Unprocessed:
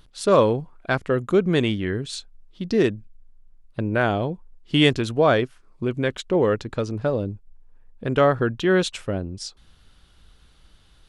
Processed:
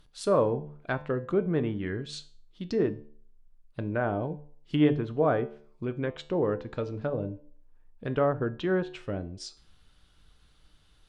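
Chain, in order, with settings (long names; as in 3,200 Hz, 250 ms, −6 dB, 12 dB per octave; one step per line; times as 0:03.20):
treble cut that deepens with the level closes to 1,300 Hz, closed at −17.5 dBFS
tuned comb filter 150 Hz, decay 0.41 s, harmonics all, mix 60%
hum removal 73.11 Hz, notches 14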